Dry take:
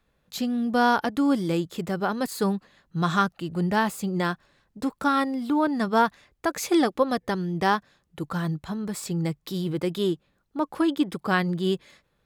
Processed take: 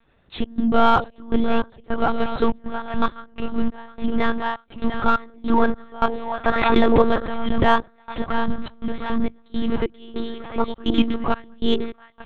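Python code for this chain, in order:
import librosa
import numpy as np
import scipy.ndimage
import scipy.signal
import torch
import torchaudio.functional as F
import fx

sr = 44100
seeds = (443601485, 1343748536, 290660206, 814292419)

p1 = x + fx.echo_split(x, sr, split_hz=580.0, low_ms=102, high_ms=695, feedback_pct=52, wet_db=-8.5, dry=0)
p2 = fx.step_gate(p1, sr, bpm=102, pattern='xxx.xxx..xx..x', floor_db=-24.0, edge_ms=4.5)
p3 = fx.vibrato(p2, sr, rate_hz=0.78, depth_cents=87.0)
p4 = fx.lpc_monotone(p3, sr, seeds[0], pitch_hz=230.0, order=10)
p5 = 10.0 ** (-25.0 / 20.0) * np.tanh(p4 / 10.0 ** (-25.0 / 20.0))
p6 = p4 + F.gain(torch.from_numpy(p5), -7.0).numpy()
p7 = fx.pre_swell(p6, sr, db_per_s=36.0, at=(6.49, 7.63), fade=0.02)
y = F.gain(torch.from_numpy(p7), 5.0).numpy()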